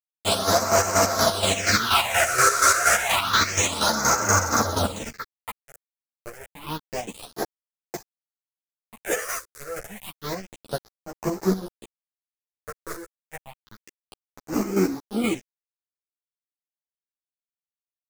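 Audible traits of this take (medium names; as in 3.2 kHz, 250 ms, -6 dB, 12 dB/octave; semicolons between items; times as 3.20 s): a quantiser's noise floor 6-bit, dither none; phasing stages 6, 0.29 Hz, lowest notch 210–3400 Hz; chopped level 4.2 Hz, depth 60%, duty 40%; a shimmering, thickened sound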